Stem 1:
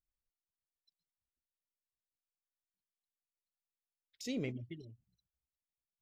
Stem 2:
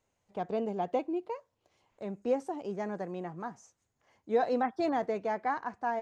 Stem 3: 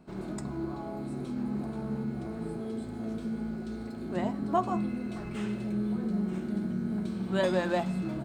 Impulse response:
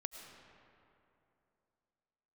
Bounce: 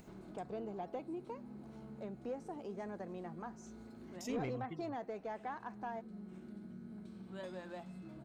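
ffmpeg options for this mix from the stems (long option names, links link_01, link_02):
-filter_complex "[0:a]equalizer=frequency=4100:width=3.2:gain=-13,volume=0dB,asplit=2[link_01][link_02];[1:a]acompressor=threshold=-39dB:ratio=2,volume=-5.5dB,asplit=2[link_03][link_04];[link_04]volume=-15dB[link_05];[2:a]volume=-19dB[link_06];[link_02]apad=whole_len=363529[link_07];[link_06][link_07]sidechaincompress=threshold=-50dB:ratio=3:attack=5.2:release=1440[link_08];[3:a]atrim=start_sample=2205[link_09];[link_05][link_09]afir=irnorm=-1:irlink=0[link_10];[link_01][link_03][link_08][link_10]amix=inputs=4:normalize=0,acompressor=mode=upward:threshold=-45dB:ratio=2.5,asoftclip=type=tanh:threshold=-31dB"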